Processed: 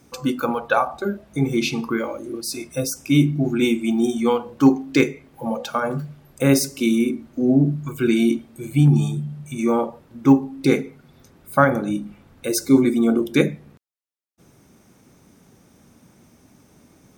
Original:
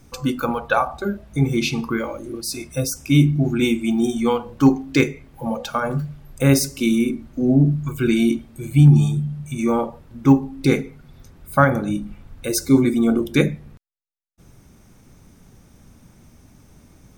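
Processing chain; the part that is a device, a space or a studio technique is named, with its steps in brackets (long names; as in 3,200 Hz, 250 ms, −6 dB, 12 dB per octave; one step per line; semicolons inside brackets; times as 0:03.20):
filter by subtraction (in parallel: low-pass filter 310 Hz 12 dB per octave + polarity inversion)
on the sum: level −1 dB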